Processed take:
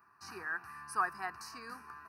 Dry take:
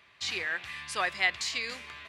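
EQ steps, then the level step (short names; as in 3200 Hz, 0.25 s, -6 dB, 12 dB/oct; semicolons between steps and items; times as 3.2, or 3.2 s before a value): HPF 350 Hz 6 dB/oct; Butterworth band-stop 3400 Hz, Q 0.61; fixed phaser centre 2100 Hz, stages 6; +3.5 dB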